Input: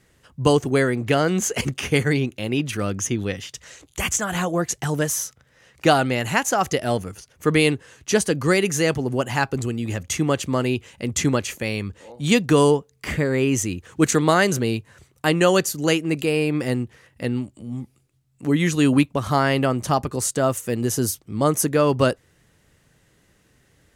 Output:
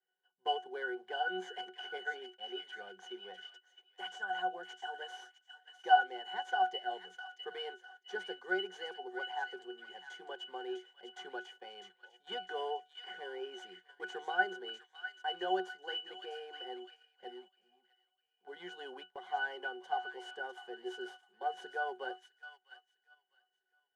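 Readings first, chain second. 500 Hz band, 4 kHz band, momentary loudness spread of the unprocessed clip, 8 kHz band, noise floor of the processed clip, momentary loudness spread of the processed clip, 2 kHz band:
−21.0 dB, −12.5 dB, 10 LU, below −35 dB, −82 dBFS, 16 LU, −12.0 dB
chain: variable-slope delta modulation 64 kbit/s
high-pass filter 560 Hz 24 dB per octave
resonances in every octave F#, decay 0.18 s
delay with a high-pass on its return 653 ms, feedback 39%, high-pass 1,800 Hz, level −6 dB
noise gate −59 dBFS, range −10 dB
level +3.5 dB

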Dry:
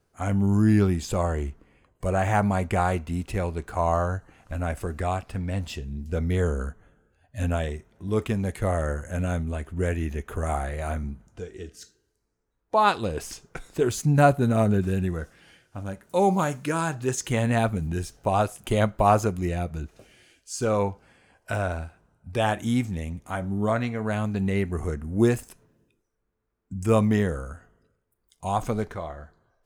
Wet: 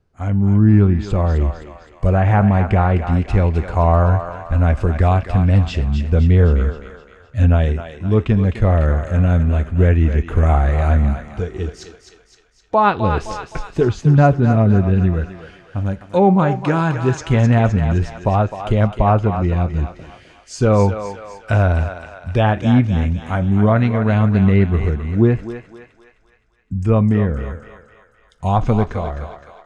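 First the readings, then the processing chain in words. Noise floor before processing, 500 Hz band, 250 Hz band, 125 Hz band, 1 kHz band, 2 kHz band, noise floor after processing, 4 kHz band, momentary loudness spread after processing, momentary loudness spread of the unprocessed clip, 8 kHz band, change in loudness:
−74 dBFS, +6.5 dB, +8.5 dB, +12.5 dB, +6.0 dB, +5.5 dB, −53 dBFS, +3.0 dB, 12 LU, 15 LU, can't be measured, +9.5 dB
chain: low-pass filter 5,100 Hz 12 dB per octave
treble cut that deepens with the level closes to 2,600 Hz, closed at −18 dBFS
low-shelf EQ 190 Hz +11 dB
automatic gain control
feedback echo with a high-pass in the loop 258 ms, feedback 56%, high-pass 620 Hz, level −7 dB
level −1 dB

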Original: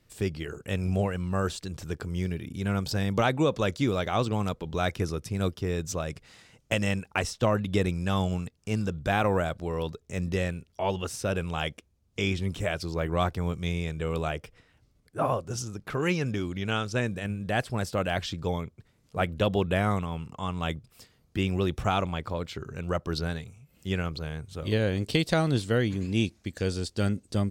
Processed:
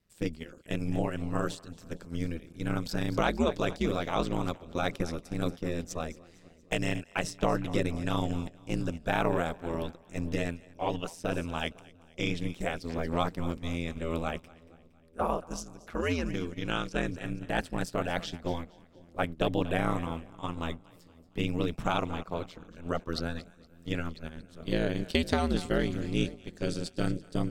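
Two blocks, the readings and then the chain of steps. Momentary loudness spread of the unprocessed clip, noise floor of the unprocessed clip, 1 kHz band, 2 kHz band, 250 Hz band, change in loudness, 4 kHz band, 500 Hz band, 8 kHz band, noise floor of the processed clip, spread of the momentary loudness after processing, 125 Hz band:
9 LU, −66 dBFS, −2.5 dB, −3.0 dB, −2.0 dB, −3.5 dB, −3.0 dB, −3.5 dB, −5.0 dB, −57 dBFS, 10 LU, −6.0 dB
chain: echo with a time of its own for lows and highs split 520 Hz, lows 502 ms, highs 232 ms, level −15 dB
ring modulation 84 Hz
noise gate −35 dBFS, range −8 dB

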